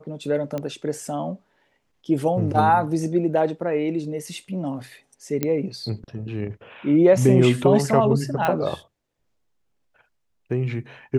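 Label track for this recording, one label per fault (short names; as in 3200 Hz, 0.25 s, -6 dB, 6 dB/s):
0.580000	0.580000	pop -16 dBFS
5.430000	5.430000	pop -9 dBFS
8.450000	8.450000	pop -10 dBFS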